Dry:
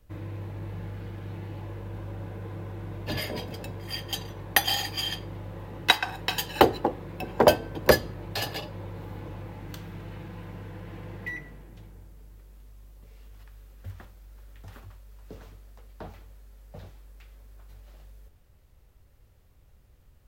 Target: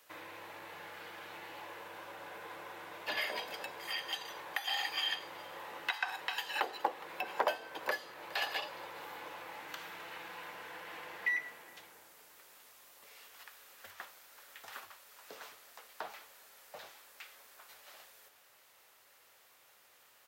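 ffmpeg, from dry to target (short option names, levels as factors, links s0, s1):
-filter_complex "[0:a]acompressor=threshold=0.00398:ratio=1.5,highpass=940,asplit=2[s0][s1];[s1]adelay=414,volume=0.0447,highshelf=f=4000:g=-9.32[s2];[s0][s2]amix=inputs=2:normalize=0,alimiter=level_in=1.41:limit=0.0631:level=0:latency=1:release=197,volume=0.708,acrossover=split=3000[s3][s4];[s4]acompressor=threshold=0.00158:ratio=4:attack=1:release=60[s5];[s3][s5]amix=inputs=2:normalize=0,volume=3.16"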